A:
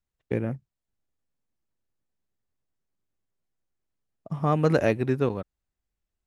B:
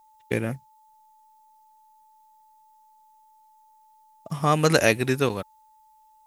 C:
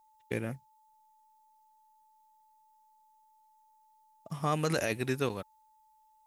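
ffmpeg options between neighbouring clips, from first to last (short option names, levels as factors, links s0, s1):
-af "crystalizer=i=9.5:c=0,aeval=exprs='val(0)+0.00178*sin(2*PI*870*n/s)':c=same"
-af "alimiter=limit=0.335:level=0:latency=1:release=27,volume=0.398"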